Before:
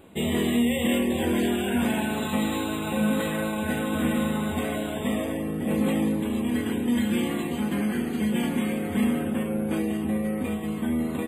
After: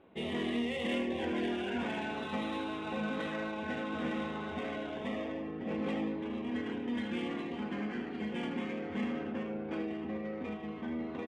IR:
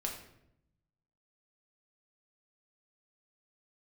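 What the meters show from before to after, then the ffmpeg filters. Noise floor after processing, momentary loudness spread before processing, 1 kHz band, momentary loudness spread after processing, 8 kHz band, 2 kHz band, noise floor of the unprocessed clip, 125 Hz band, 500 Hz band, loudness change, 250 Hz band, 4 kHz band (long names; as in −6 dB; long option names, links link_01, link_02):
−41 dBFS, 4 LU, −7.0 dB, 5 LU, below −20 dB, −7.5 dB, −31 dBFS, −14.0 dB, −8.5 dB, −10.5 dB, −11.5 dB, −9.0 dB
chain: -filter_complex "[0:a]lowshelf=frequency=220:gain=-11,aresample=11025,aresample=44100,adynamicsmooth=sensitivity=4.5:basefreq=2600,asplit=2[link_01][link_02];[link_02]aecho=0:1:78:0.316[link_03];[link_01][link_03]amix=inputs=2:normalize=0,volume=-6.5dB"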